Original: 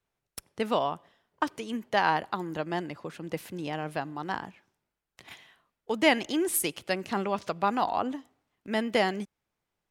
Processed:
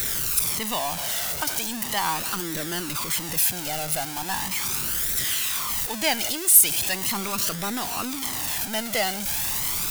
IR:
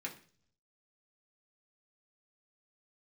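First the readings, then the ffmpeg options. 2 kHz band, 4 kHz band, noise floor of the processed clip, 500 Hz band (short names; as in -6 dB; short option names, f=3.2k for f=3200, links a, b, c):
+3.0 dB, +10.0 dB, -32 dBFS, -3.5 dB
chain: -af "aeval=exprs='val(0)+0.5*0.0562*sgn(val(0))':c=same,crystalizer=i=5:c=0,flanger=delay=0.5:depth=1:regen=21:speed=0.39:shape=triangular,volume=-2.5dB"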